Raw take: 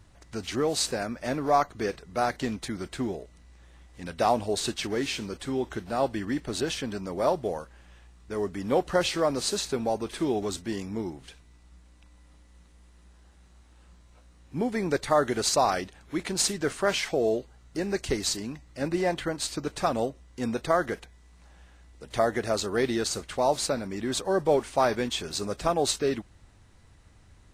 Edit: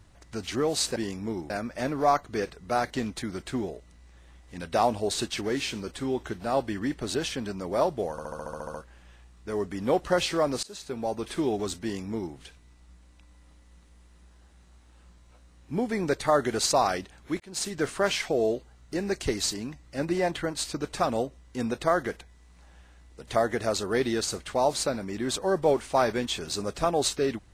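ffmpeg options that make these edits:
ffmpeg -i in.wav -filter_complex "[0:a]asplit=14[link_01][link_02][link_03][link_04][link_05][link_06][link_07][link_08][link_09][link_10][link_11][link_12][link_13][link_14];[link_01]atrim=end=0.962[link_15];[link_02]atrim=start=10.648:end=11.192[link_16];[link_03]atrim=start=0.958:end=7.642[link_17];[link_04]atrim=start=7.568:end=7.642[link_18];[link_05]atrim=start=7.568:end=7.642[link_19];[link_06]atrim=start=7.568:end=7.642[link_20];[link_07]atrim=start=7.568:end=7.642[link_21];[link_08]atrim=start=7.568:end=7.642[link_22];[link_09]atrim=start=7.568:end=7.642[link_23];[link_10]atrim=start=7.568:end=7.642[link_24];[link_11]atrim=start=7.568:end=7.642[link_25];[link_12]atrim=start=7.568:end=9.46,asetpts=PTS-STARTPTS,afade=type=out:start_time=1.888:duration=0.004:curve=hsin:silence=0.0668344[link_26];[link_13]atrim=start=9.46:end=16.23,asetpts=PTS-STARTPTS,afade=type=in:duration=0.61:silence=0.0668344,afade=type=out:start_time=6.766:duration=0.004:curve=hsin[link_27];[link_14]atrim=start=16.23,asetpts=PTS-STARTPTS,afade=type=in:duration=0.41[link_28];[link_15][link_16]acrossfade=duration=0.004:curve1=hsin:curve2=hsin[link_29];[link_29][link_17]acrossfade=duration=0.004:curve1=hsin:curve2=hsin[link_30];[link_30][link_18]acrossfade=duration=0.004:curve1=hsin:curve2=hsin[link_31];[link_31][link_19]acrossfade=duration=0.004:curve1=hsin:curve2=hsin[link_32];[link_32][link_20]acrossfade=duration=0.004:curve1=hsin:curve2=hsin[link_33];[link_33][link_21]acrossfade=duration=0.004:curve1=hsin:curve2=hsin[link_34];[link_34][link_22]acrossfade=duration=0.004:curve1=hsin:curve2=hsin[link_35];[link_35][link_23]acrossfade=duration=0.004:curve1=hsin:curve2=hsin[link_36];[link_36][link_24]acrossfade=duration=0.004:curve1=hsin:curve2=hsin[link_37];[link_37][link_25]acrossfade=duration=0.004:curve1=hsin:curve2=hsin[link_38];[link_26][link_27][link_28]concat=n=3:v=0:a=1[link_39];[link_38][link_39]acrossfade=duration=0.004:curve1=hsin:curve2=hsin" out.wav

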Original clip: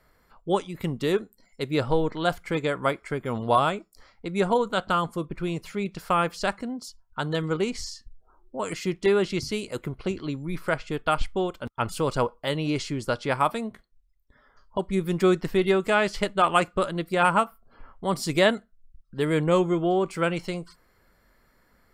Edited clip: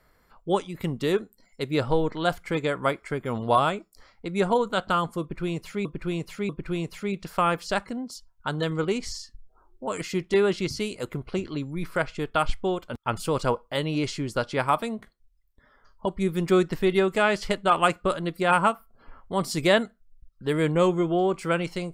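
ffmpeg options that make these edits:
ffmpeg -i in.wav -filter_complex "[0:a]asplit=3[link_01][link_02][link_03];[link_01]atrim=end=5.852[link_04];[link_02]atrim=start=5.208:end=5.852[link_05];[link_03]atrim=start=5.208[link_06];[link_04][link_05]acrossfade=duration=0.004:curve1=hsin:curve2=hsin[link_07];[link_07][link_06]acrossfade=duration=0.004:curve1=hsin:curve2=hsin" out.wav

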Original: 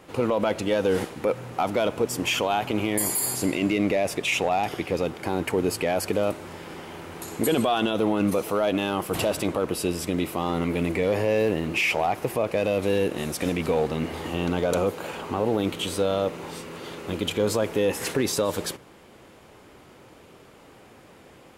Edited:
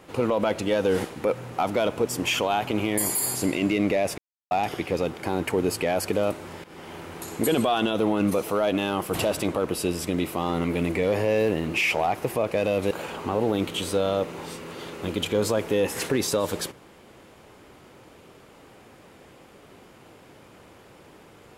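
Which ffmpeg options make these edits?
ffmpeg -i in.wav -filter_complex "[0:a]asplit=5[link_01][link_02][link_03][link_04][link_05];[link_01]atrim=end=4.18,asetpts=PTS-STARTPTS,afade=type=out:start_time=4.176:duration=0.004:curve=hsin[link_06];[link_02]atrim=start=4.18:end=4.51,asetpts=PTS-STARTPTS,volume=0[link_07];[link_03]atrim=start=4.51:end=6.64,asetpts=PTS-STARTPTS,afade=type=in:duration=0.004:curve=hsin,afade=type=out:start_time=2.126:duration=0.004:curve=hsin:silence=0.199526[link_08];[link_04]atrim=start=6.64:end=12.912,asetpts=PTS-STARTPTS,afade=type=in:duration=0.36:curve=qsin:silence=0.199526[link_09];[link_05]atrim=start=14.958[link_10];[link_06][link_07][link_08][link_09]concat=n=4:v=0:a=1[link_11];[link_11][link_10]acrossfade=duration=0.004:curve1=hsin:curve2=hsin" out.wav

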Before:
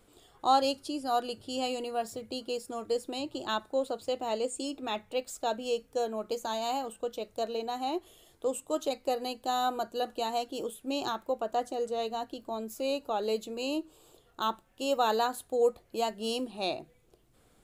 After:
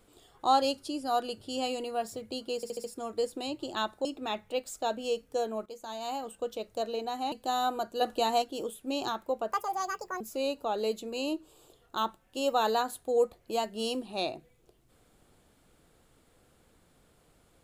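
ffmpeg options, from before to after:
ffmpeg -i in.wav -filter_complex "[0:a]asplit=12[link_01][link_02][link_03][link_04][link_05][link_06][link_07][link_08][link_09][link_10][link_11][link_12];[link_01]atrim=end=2.632[link_13];[link_02]atrim=start=2.558:end=2.632[link_14];[link_03]atrim=start=2.558:end=2.632[link_15];[link_04]atrim=start=2.558:end=2.632[link_16];[link_05]atrim=start=2.558:end=3.772[link_17];[link_06]atrim=start=4.658:end=6.27,asetpts=PTS-STARTPTS,afade=type=out:start_time=1.608:duration=0.004:curve=hsin:silence=0.223872[link_18];[link_07]atrim=start=6.27:end=7.932,asetpts=PTS-STARTPTS,afade=type=in:duration=0.78:silence=0.223872[link_19];[link_08]atrim=start=9.318:end=10.012[link_20];[link_09]atrim=start=10.008:end=10.422,asetpts=PTS-STARTPTS,volume=4.5dB[link_21];[link_10]atrim=start=10.418:end=11.524[link_22];[link_11]atrim=start=11.52:end=12.65,asetpts=PTS-STARTPTS,asetrate=72765,aresample=44100[link_23];[link_12]atrim=start=12.646[link_24];[link_13][link_14]acrossfade=duration=0.004:curve1=hsin:curve2=hsin[link_25];[link_25][link_15]acrossfade=duration=0.004:curve1=hsin:curve2=hsin[link_26];[link_26][link_16]acrossfade=duration=0.004:curve1=hsin:curve2=hsin[link_27];[link_27][link_17]acrossfade=duration=0.004:curve1=hsin:curve2=hsin[link_28];[link_18][link_19]concat=n=2:v=0:a=1[link_29];[link_28][link_29]acrossfade=duration=0.004:curve1=hsin:curve2=hsin[link_30];[link_30][link_20]acrossfade=duration=0.004:curve1=hsin:curve2=hsin[link_31];[link_31][link_21]acrossfade=duration=0.004:curve1=hsin:curve2=hsin[link_32];[link_32][link_22]acrossfade=duration=0.004:curve1=hsin:curve2=hsin[link_33];[link_33][link_23]acrossfade=duration=0.004:curve1=hsin:curve2=hsin[link_34];[link_34][link_24]acrossfade=duration=0.004:curve1=hsin:curve2=hsin" out.wav

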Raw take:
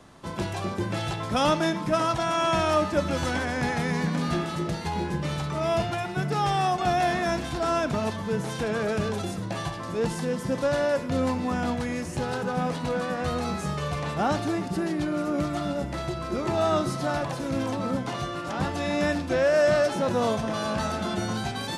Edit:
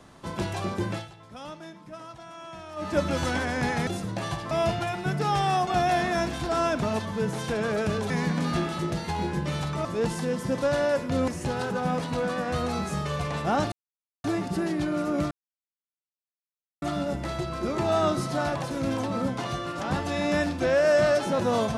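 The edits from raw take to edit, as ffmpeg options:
ffmpeg -i in.wav -filter_complex "[0:a]asplit=10[link_01][link_02][link_03][link_04][link_05][link_06][link_07][link_08][link_09][link_10];[link_01]atrim=end=1.08,asetpts=PTS-STARTPTS,afade=type=out:start_time=0.89:duration=0.19:silence=0.125893[link_11];[link_02]atrim=start=1.08:end=2.76,asetpts=PTS-STARTPTS,volume=-18dB[link_12];[link_03]atrim=start=2.76:end=3.872,asetpts=PTS-STARTPTS,afade=type=in:duration=0.19:silence=0.125893[link_13];[link_04]atrim=start=9.208:end=9.852[link_14];[link_05]atrim=start=5.618:end=9.212[link_15];[link_06]atrim=start=3.868:end=5.622[link_16];[link_07]atrim=start=9.848:end=11.282[link_17];[link_08]atrim=start=11.998:end=14.44,asetpts=PTS-STARTPTS,afade=type=out:start_time=2.438:duration=0.004:curve=hsin,apad=pad_dur=0.52[link_18];[link_09]atrim=start=14.44:end=15.51,asetpts=PTS-STARTPTS,afade=type=in:duration=0.004:curve=hsin,afade=type=out:start_time=1.066:duration=0.004:curve=hsin,apad=pad_dur=1.51[link_19];[link_10]atrim=start=15.51,asetpts=PTS-STARTPTS,afade=type=in:duration=0.004:curve=hsin[link_20];[link_11][link_12][link_13]concat=n=3:v=0:a=1[link_21];[link_21][link_14]acrossfade=duration=0.004:curve1=hsin:curve2=hsin[link_22];[link_22][link_15]acrossfade=duration=0.004:curve1=hsin:curve2=hsin[link_23];[link_23][link_16]acrossfade=duration=0.004:curve1=hsin:curve2=hsin[link_24];[link_24][link_17]acrossfade=duration=0.004:curve1=hsin:curve2=hsin[link_25];[link_18][link_19][link_20]concat=n=3:v=0:a=1[link_26];[link_25][link_26]acrossfade=duration=0.004:curve1=hsin:curve2=hsin" out.wav

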